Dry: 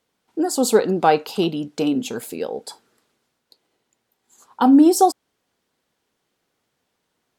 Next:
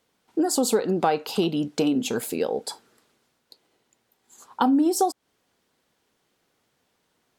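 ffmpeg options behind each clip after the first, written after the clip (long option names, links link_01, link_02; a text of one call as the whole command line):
ffmpeg -i in.wav -af "acompressor=threshold=-22dB:ratio=4,volume=2.5dB" out.wav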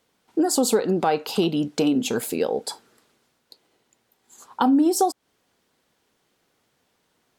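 ffmpeg -i in.wav -af "alimiter=level_in=10.5dB:limit=-1dB:release=50:level=0:latency=1,volume=-8.5dB" out.wav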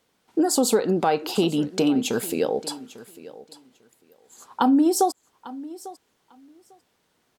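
ffmpeg -i in.wav -af "aecho=1:1:848|1696:0.126|0.0201" out.wav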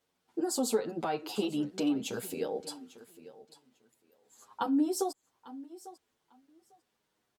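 ffmpeg -i in.wav -filter_complex "[0:a]asplit=2[link_01][link_02];[link_02]adelay=8.4,afreqshift=-0.36[link_03];[link_01][link_03]amix=inputs=2:normalize=1,volume=-7.5dB" out.wav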